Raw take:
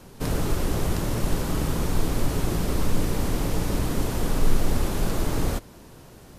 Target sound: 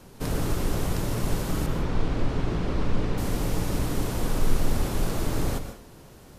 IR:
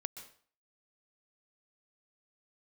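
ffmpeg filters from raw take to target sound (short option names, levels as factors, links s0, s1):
-filter_complex "[0:a]asettb=1/sr,asplit=3[s0][s1][s2];[s0]atrim=end=1.664[s3];[s1]atrim=start=1.66:end=3.18,asetpts=PTS-STARTPTS,afade=t=in:d=0.004:c=qsin,afade=t=out:st=1.516:d=0.004:c=qsin,lowpass=3600[s4];[s2]atrim=start=3.176[s5];[s3][s4]acrossfade=d=0.004:c1=hsin:c2=qsin[s6];[s6][s5]acrossfade=d=0.004:c1=qsin:c2=hsin[s7];[1:a]atrim=start_sample=2205[s8];[s7][s8]afir=irnorm=-1:irlink=0"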